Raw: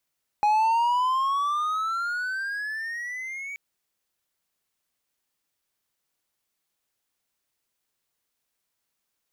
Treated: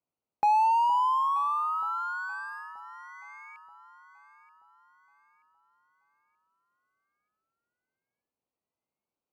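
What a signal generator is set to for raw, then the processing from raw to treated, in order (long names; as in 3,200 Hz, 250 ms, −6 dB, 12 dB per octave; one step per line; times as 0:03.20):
pitch glide with a swell triangle, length 3.13 s, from 829 Hz, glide +17.5 semitones, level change −15.5 dB, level −15.5 dB
adaptive Wiener filter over 25 samples
high-pass filter 120 Hz 6 dB per octave
delay that swaps between a low-pass and a high-pass 465 ms, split 850 Hz, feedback 63%, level −12 dB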